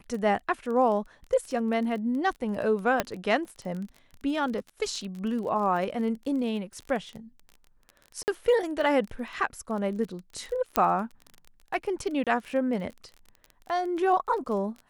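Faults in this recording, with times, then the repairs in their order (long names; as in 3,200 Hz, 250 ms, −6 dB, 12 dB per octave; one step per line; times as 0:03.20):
surface crackle 24 per second −34 dBFS
0:03.00: click −9 dBFS
0:08.23–0:08.28: drop-out 49 ms
0:10.76: click −7 dBFS
0:12.24–0:12.27: drop-out 27 ms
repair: click removal
repair the gap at 0:08.23, 49 ms
repair the gap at 0:12.24, 27 ms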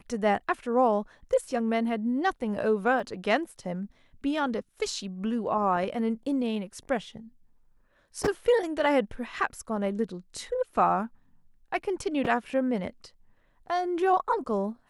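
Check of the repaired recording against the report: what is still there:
0:03.00: click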